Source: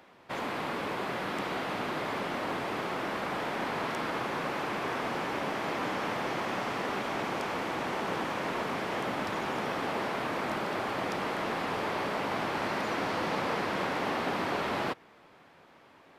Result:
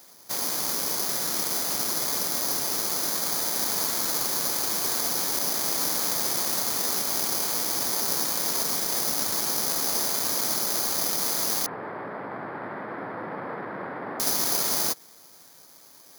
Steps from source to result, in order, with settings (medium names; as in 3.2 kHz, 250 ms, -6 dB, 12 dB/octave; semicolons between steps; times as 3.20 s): careless resampling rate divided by 8×, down filtered, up zero stuff; 11.66–14.20 s: elliptic band-pass 110–1800 Hz, stop band 50 dB; trim -2.5 dB